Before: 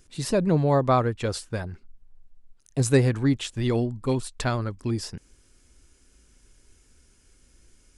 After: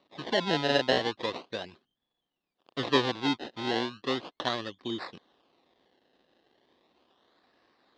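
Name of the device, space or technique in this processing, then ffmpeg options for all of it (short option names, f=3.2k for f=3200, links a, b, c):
circuit-bent sampling toy: -af "acrusher=samples=26:mix=1:aa=0.000001:lfo=1:lforange=26:lforate=0.36,highpass=410,equalizer=f=430:t=q:w=4:g=-4,equalizer=f=620:t=q:w=4:g=-5,equalizer=f=890:t=q:w=4:g=-5,equalizer=f=1.4k:t=q:w=4:g=-9,equalizer=f=2.3k:t=q:w=4:g=-8,equalizer=f=3.7k:t=q:w=4:g=5,lowpass=f=4.3k:w=0.5412,lowpass=f=4.3k:w=1.3066,volume=2dB"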